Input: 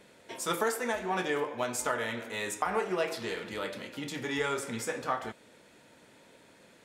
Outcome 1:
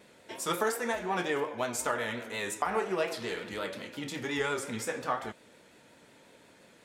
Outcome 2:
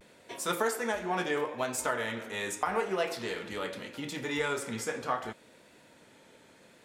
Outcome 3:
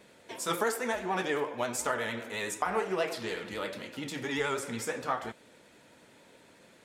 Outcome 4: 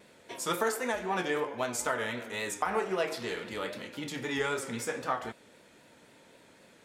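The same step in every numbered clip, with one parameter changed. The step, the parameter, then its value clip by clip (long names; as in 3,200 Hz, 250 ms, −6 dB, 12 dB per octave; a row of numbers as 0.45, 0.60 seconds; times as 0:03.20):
pitch vibrato, speed: 5.6, 0.75, 11, 3.8 Hertz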